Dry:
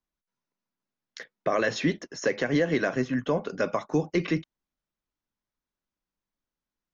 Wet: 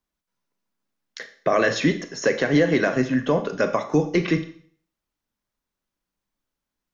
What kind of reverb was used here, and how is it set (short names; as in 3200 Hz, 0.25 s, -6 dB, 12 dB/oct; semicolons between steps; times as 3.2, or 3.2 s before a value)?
Schroeder reverb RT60 0.52 s, combs from 27 ms, DRR 9 dB; gain +5 dB